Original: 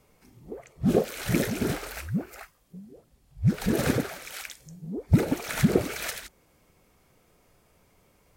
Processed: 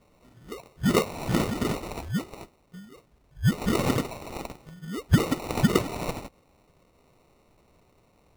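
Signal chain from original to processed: treble shelf 7.9 kHz +8.5 dB; sample-and-hold 27×

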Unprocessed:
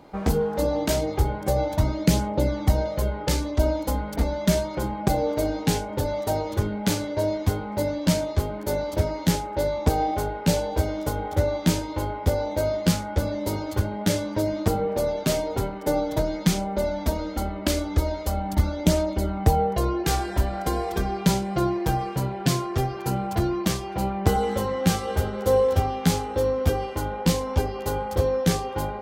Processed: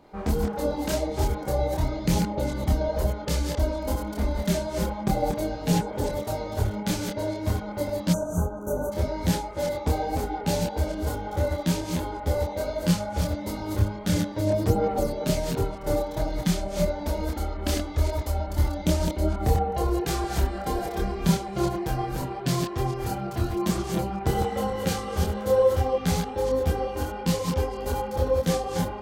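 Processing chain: chunks repeated in reverse 179 ms, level -4.5 dB; chorus voices 6, 1.4 Hz, delay 26 ms, depth 3 ms; time-frequency box 8.13–8.92 s, 1.6–5.8 kHz -29 dB; trim -1 dB

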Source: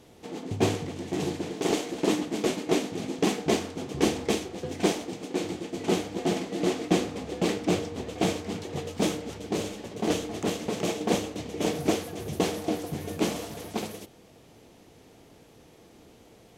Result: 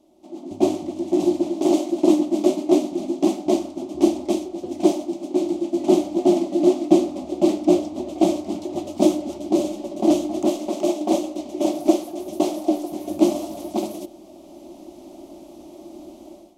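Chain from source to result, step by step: 10.48–13.08 s: peaking EQ 110 Hz -12.5 dB 1.4 oct; level rider gain up to 16.5 dB; static phaser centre 460 Hz, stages 6; small resonant body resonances 350/580/1700 Hz, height 17 dB, ringing for 45 ms; trim -10 dB

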